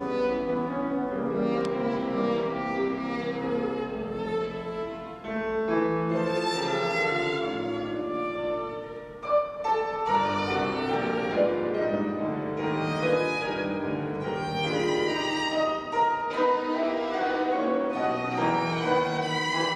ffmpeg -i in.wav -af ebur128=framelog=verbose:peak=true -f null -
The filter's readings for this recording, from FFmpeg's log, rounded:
Integrated loudness:
  I:         -27.6 LUFS
  Threshold: -37.7 LUFS
Loudness range:
  LRA:         2.9 LU
  Threshold: -47.7 LUFS
  LRA low:   -29.3 LUFS
  LRA high:  -26.4 LUFS
True peak:
  Peak:      -10.8 dBFS